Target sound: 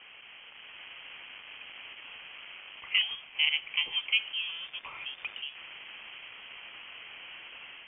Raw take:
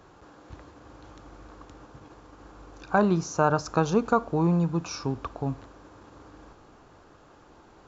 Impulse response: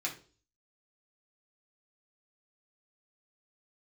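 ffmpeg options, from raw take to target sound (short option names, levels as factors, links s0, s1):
-filter_complex "[0:a]aeval=exprs='val(0)+0.5*0.0168*sgn(val(0))':c=same,highpass=f=470:w=0.5412,highpass=f=470:w=1.3066,tremolo=f=220:d=0.333,asplit=3[s0][s1][s2];[s0]afade=t=out:st=2.8:d=0.02[s3];[s1]afreqshift=13,afade=t=in:st=2.8:d=0.02,afade=t=out:st=3.45:d=0.02[s4];[s2]afade=t=in:st=3.45:d=0.02[s5];[s3][s4][s5]amix=inputs=3:normalize=0,asettb=1/sr,asplit=3[s6][s7][s8];[s6]atrim=end=4.494[s9];[s7]atrim=start=4.49:end=5.39,asetpts=PTS-STARTPTS,afade=t=in:d=0.004:c=qsin,afade=t=out:st=0.896:d=0.004:c=qsin,acrusher=bits=6:mix=0:aa=0.5[s10];[s8]atrim=start=5.386[s11];[s9][s10]acrossfade=d=0.004:c1=hsin:c2=qsin[s12];[s12][s11]acrossfade=d=0.004:c1=qsin:c2=hsin,lowpass=f=3100:t=q:w=0.5098,lowpass=f=3100:t=q:w=0.6013,lowpass=f=3100:t=q:w=0.9,lowpass=f=3100:t=q:w=2.563,afreqshift=-3600,dynaudnorm=f=430:g=3:m=1.78,volume=0.447"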